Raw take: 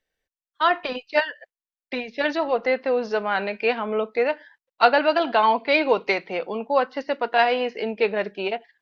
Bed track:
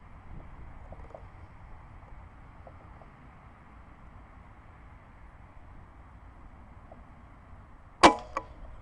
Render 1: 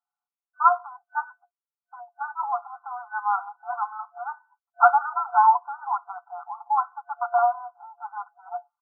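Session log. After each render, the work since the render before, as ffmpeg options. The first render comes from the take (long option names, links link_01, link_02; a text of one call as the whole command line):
ffmpeg -i in.wav -af "afftfilt=real='re*between(b*sr/4096,700,1500)':imag='im*between(b*sr/4096,700,1500)':win_size=4096:overlap=0.75,aecho=1:1:5.9:0.91" out.wav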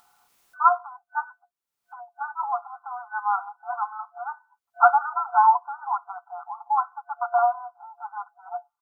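ffmpeg -i in.wav -af "acompressor=mode=upward:threshold=-39dB:ratio=2.5" out.wav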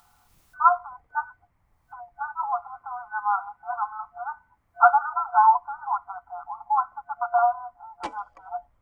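ffmpeg -i in.wav -i bed.wav -filter_complex "[1:a]volume=-19dB[link_01];[0:a][link_01]amix=inputs=2:normalize=0" out.wav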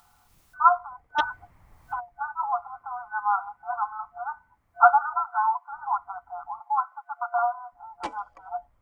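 ffmpeg -i in.wav -filter_complex "[0:a]asplit=3[link_01][link_02][link_03];[link_01]afade=type=out:start_time=1.18:duration=0.02[link_04];[link_02]aeval=exprs='0.2*sin(PI/2*2.51*val(0)/0.2)':channel_layout=same,afade=type=in:start_time=1.18:duration=0.02,afade=type=out:start_time=1.99:duration=0.02[link_05];[link_03]afade=type=in:start_time=1.99:duration=0.02[link_06];[link_04][link_05][link_06]amix=inputs=3:normalize=0,asplit=3[link_07][link_08][link_09];[link_07]afade=type=out:start_time=5.25:duration=0.02[link_10];[link_08]highpass=1300,afade=type=in:start_time=5.25:duration=0.02,afade=type=out:start_time=5.71:duration=0.02[link_11];[link_09]afade=type=in:start_time=5.71:duration=0.02[link_12];[link_10][link_11][link_12]amix=inputs=3:normalize=0,asettb=1/sr,asplit=3[link_13][link_14][link_15];[link_13]atrim=end=6.604[link_16];[link_14]atrim=start=6.6:end=7.72,asetpts=PTS-STARTPTS,afade=type=in:duration=0.004:curve=qsin,afade=type=out:start_time=1.116:duration=0.004:curve=qsin,highpass=850[link_17];[link_15]atrim=start=7.716[link_18];[link_16][link_17]acrossfade=duration=0.004:curve1=hsin:curve2=qsin[link_19];[link_19][link_18]acrossfade=duration=0.004:curve1=qsin:curve2=hsin" out.wav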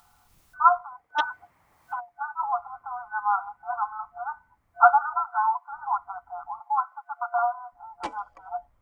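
ffmpeg -i in.wav -filter_complex "[0:a]asettb=1/sr,asplit=3[link_01][link_02][link_03];[link_01]atrim=end=0.814[link_04];[link_02]atrim=start=0.81:end=2.39,asetpts=PTS-STARTPTS,afade=type=in:duration=0.004:curve=qsin,afade=type=out:start_time=1.576:duration=0.004:curve=qsin,highpass=frequency=420:poles=1[link_05];[link_03]atrim=start=2.386[link_06];[link_04][link_05]acrossfade=duration=0.004:curve1=hsin:curve2=qsin[link_07];[link_07][link_06]acrossfade=duration=0.004:curve1=qsin:curve2=hsin" out.wav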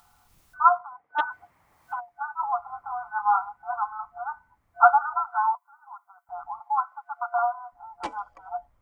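ffmpeg -i in.wav -filter_complex "[0:a]asplit=3[link_01][link_02][link_03];[link_01]afade=type=out:start_time=0.72:duration=0.02[link_04];[link_02]highpass=130,lowpass=2300,afade=type=in:start_time=0.72:duration=0.02,afade=type=out:start_time=1.3:duration=0.02[link_05];[link_03]afade=type=in:start_time=1.3:duration=0.02[link_06];[link_04][link_05][link_06]amix=inputs=3:normalize=0,asettb=1/sr,asplit=3[link_07][link_08][link_09];[link_07]atrim=end=2.674[link_10];[link_08]atrim=start=2.67:end=3.46,asetpts=PTS-STARTPTS,afade=type=in:duration=0.004:curve=qsin,afade=type=out:start_time=0.786:duration=0.004:curve=qsin,asplit=2[link_11][link_12];[link_12]adelay=23,volume=-3dB[link_13];[link_11][link_13]amix=inputs=2:normalize=0,atrim=end_sample=34839[link_14];[link_09]atrim=start=3.456[link_15];[link_10][link_14]acrossfade=duration=0.004:curve1=hsin:curve2=qsin[link_16];[link_16][link_15]acrossfade=duration=0.004:curve1=qsin:curve2=hsin,asettb=1/sr,asplit=3[link_17][link_18][link_19];[link_17]atrim=end=5.554[link_20];[link_18]atrim=start=5.55:end=6.29,asetpts=PTS-STARTPTS,afade=type=in:duration=0.004:curve=qsin,afade=type=out:start_time=0.736:duration=0.004:curve=qsin,aderivative[link_21];[link_19]atrim=start=6.286[link_22];[link_20][link_21]acrossfade=duration=0.004:curve1=hsin:curve2=qsin[link_23];[link_23][link_22]acrossfade=duration=0.004:curve1=qsin:curve2=hsin" out.wav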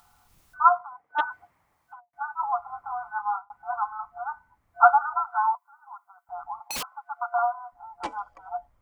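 ffmpeg -i in.wav -filter_complex "[0:a]asettb=1/sr,asplit=3[link_01][link_02][link_03];[link_01]atrim=end=6.534[link_04];[link_02]atrim=start=6.53:end=6.94,asetpts=PTS-STARTPTS,afade=type=in:duration=0.004:curve=qsin,afade=type=out:start_time=0.406:duration=0.004:curve=qsin,aeval=exprs='(mod(21.1*val(0)+1,2)-1)/21.1':channel_layout=same[link_05];[link_03]atrim=start=6.936[link_06];[link_04][link_05]acrossfade=duration=0.004:curve1=hsin:curve2=qsin[link_07];[link_07][link_06]acrossfade=duration=0.004:curve1=qsin:curve2=hsin,asplit=3[link_08][link_09][link_10];[link_08]atrim=end=2.13,asetpts=PTS-STARTPTS,afade=type=out:start_time=1.23:duration=0.9[link_11];[link_09]atrim=start=2.13:end=3.5,asetpts=PTS-STARTPTS,afade=type=in:duration=0.004:curve=hsin,afade=type=out:start_time=0.97:duration=0.4[link_12];[link_10]atrim=start=3.5,asetpts=PTS-STARTPTS,afade=type=in:duration=0.004:curve=hsin[link_13];[link_11][link_12][link_13]concat=n=3:v=0:a=1" out.wav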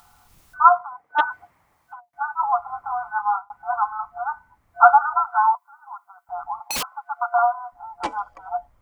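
ffmpeg -i in.wav -af "volume=6dB,alimiter=limit=-1dB:level=0:latency=1" out.wav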